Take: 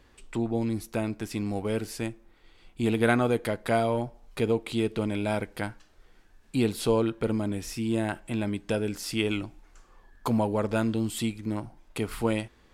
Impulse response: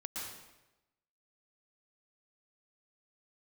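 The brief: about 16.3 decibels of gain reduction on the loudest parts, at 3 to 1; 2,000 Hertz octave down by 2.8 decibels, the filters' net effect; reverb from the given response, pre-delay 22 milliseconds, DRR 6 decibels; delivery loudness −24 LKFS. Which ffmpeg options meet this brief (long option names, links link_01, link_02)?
-filter_complex "[0:a]equalizer=frequency=2000:width_type=o:gain=-4,acompressor=threshold=-43dB:ratio=3,asplit=2[link_01][link_02];[1:a]atrim=start_sample=2205,adelay=22[link_03];[link_02][link_03]afir=irnorm=-1:irlink=0,volume=-6.5dB[link_04];[link_01][link_04]amix=inputs=2:normalize=0,volume=18dB"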